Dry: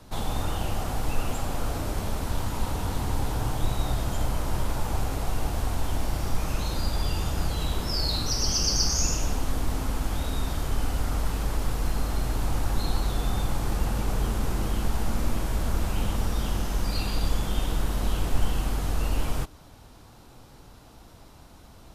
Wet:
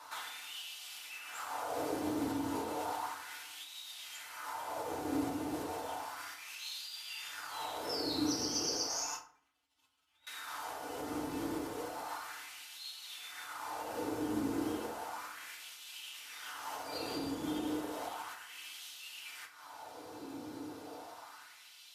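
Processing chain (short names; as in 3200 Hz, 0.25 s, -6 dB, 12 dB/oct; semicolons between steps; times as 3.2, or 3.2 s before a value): 9.16–10.27 spectral contrast raised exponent 1.9; compressor 4:1, threshold -34 dBFS, peak gain reduction 16.5 dB; LFO high-pass sine 0.33 Hz 290–3200 Hz; bell 86 Hz +10.5 dB 0.91 oct; FDN reverb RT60 0.45 s, low-frequency decay 1.25×, high-frequency decay 0.6×, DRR -3 dB; gain -3 dB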